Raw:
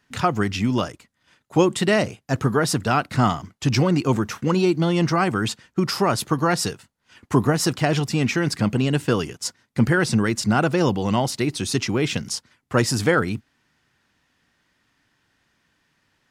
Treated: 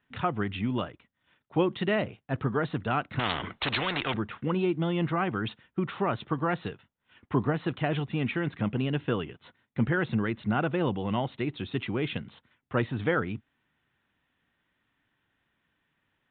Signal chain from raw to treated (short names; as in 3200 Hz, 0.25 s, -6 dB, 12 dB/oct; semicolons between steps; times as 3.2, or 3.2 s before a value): downsampling 8000 Hz; 3.19–4.14 spectral compressor 4:1; gain -8 dB